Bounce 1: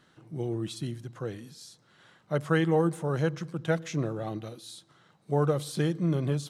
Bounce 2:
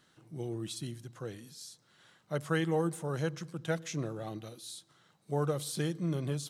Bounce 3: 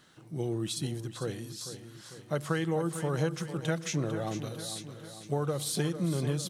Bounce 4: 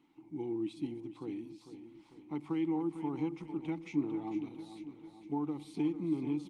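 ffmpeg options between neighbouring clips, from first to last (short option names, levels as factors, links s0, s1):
-af "highshelf=f=3900:g=9.5,volume=0.501"
-filter_complex "[0:a]acompressor=threshold=0.0251:ratio=6,asplit=2[s0][s1];[s1]aecho=0:1:449|898|1347|1796|2245|2694:0.282|0.158|0.0884|0.0495|0.0277|0.0155[s2];[s0][s2]amix=inputs=2:normalize=0,volume=2"
-filter_complex "[0:a]asplit=3[s0][s1][s2];[s0]bandpass=f=300:t=q:w=8,volume=1[s3];[s1]bandpass=f=870:t=q:w=8,volume=0.501[s4];[s2]bandpass=f=2240:t=q:w=8,volume=0.355[s5];[s3][s4][s5]amix=inputs=3:normalize=0,volume=2.24" -ar 48000 -c:a libopus -b:a 32k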